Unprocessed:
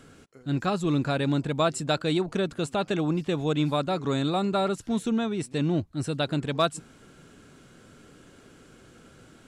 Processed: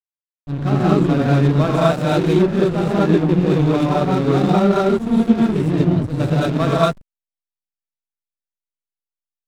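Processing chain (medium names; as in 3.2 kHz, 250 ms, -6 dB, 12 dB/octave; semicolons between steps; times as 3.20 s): tone controls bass +4 dB, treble -12 dB; gated-style reverb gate 260 ms rising, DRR -7.5 dB; hysteresis with a dead band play -21 dBFS; trim +2 dB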